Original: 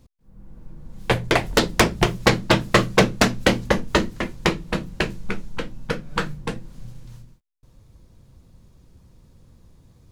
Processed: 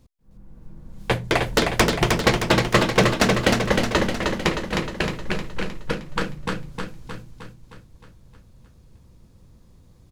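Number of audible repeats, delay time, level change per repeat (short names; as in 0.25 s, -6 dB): 7, 0.31 s, -5.0 dB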